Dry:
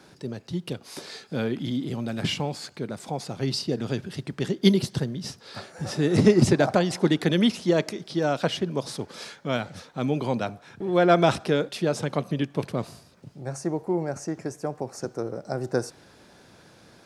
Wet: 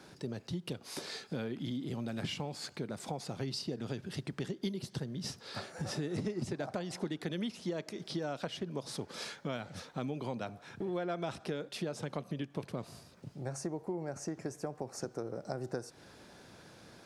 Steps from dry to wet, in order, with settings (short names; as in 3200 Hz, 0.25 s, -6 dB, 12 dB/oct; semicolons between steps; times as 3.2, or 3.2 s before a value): compressor 6:1, threshold -32 dBFS, peak gain reduction 19 dB; gain -2.5 dB